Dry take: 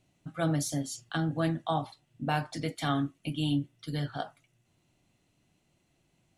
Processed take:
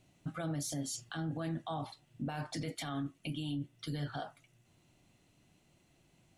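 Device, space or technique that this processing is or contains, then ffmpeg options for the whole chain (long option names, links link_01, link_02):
stacked limiters: -af "alimiter=limit=-22dB:level=0:latency=1:release=19,alimiter=level_in=4dB:limit=-24dB:level=0:latency=1:release=272,volume=-4dB,alimiter=level_in=9dB:limit=-24dB:level=0:latency=1:release=12,volume=-9dB,volume=3dB"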